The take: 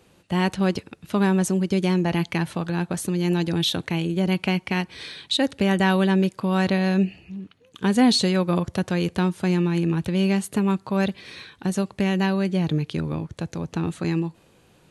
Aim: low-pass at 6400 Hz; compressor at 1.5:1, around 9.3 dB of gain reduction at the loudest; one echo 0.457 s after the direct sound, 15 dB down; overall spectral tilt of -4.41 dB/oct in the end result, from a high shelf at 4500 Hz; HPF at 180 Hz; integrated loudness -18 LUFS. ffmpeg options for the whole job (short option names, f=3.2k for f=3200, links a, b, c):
-af "highpass=180,lowpass=6.4k,highshelf=f=4.5k:g=6,acompressor=threshold=-40dB:ratio=1.5,aecho=1:1:457:0.178,volume=14dB"